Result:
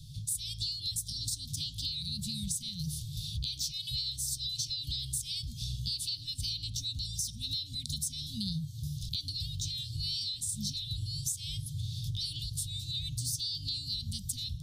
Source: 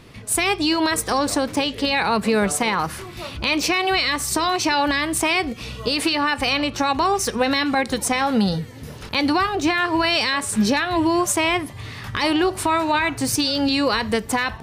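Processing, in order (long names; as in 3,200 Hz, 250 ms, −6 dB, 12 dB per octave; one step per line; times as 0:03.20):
Chebyshev band-stop filter 150–3,500 Hz, order 5
parametric band 250 Hz +14.5 dB 0.98 octaves
downward compressor 6 to 1, threshold −32 dBFS, peak gain reduction 13 dB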